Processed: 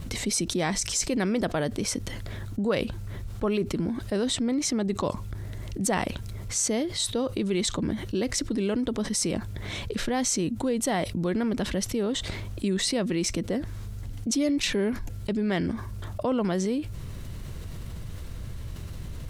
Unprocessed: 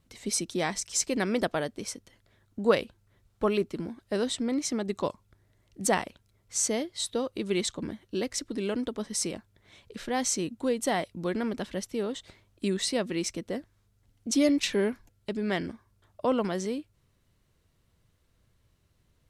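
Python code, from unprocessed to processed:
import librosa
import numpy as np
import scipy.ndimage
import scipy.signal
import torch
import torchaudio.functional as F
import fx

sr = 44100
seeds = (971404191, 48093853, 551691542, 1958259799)

y = fx.low_shelf(x, sr, hz=200.0, db=9.5)
y = fx.env_flatten(y, sr, amount_pct=70)
y = y * librosa.db_to_amplitude(-7.0)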